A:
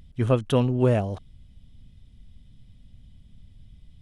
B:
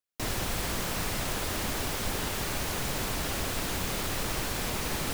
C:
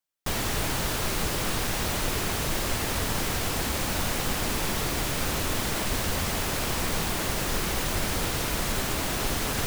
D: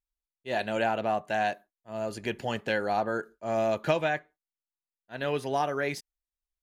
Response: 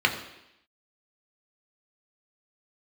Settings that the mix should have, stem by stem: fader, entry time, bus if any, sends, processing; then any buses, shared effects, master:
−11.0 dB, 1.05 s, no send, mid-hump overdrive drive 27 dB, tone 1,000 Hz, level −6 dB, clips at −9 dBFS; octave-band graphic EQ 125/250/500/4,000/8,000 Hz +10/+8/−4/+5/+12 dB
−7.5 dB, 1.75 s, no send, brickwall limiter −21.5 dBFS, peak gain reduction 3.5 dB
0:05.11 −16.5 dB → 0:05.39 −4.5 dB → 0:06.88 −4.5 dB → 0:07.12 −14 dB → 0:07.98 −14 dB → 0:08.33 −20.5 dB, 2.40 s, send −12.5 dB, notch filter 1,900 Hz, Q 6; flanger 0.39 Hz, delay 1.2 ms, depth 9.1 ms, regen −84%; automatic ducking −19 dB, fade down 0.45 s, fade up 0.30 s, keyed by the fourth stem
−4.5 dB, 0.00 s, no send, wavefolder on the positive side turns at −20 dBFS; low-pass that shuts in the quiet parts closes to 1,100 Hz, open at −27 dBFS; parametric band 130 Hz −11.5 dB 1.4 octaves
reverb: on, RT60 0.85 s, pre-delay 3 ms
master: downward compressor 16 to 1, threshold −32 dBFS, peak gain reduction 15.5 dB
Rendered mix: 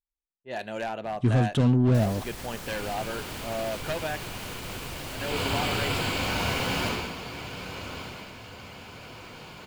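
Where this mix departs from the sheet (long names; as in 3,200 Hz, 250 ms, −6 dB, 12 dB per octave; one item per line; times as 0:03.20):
stem C: send −12.5 dB → −2.5 dB
stem D: missing parametric band 130 Hz −11.5 dB 1.4 octaves
master: missing downward compressor 16 to 1, threshold −32 dBFS, peak gain reduction 15.5 dB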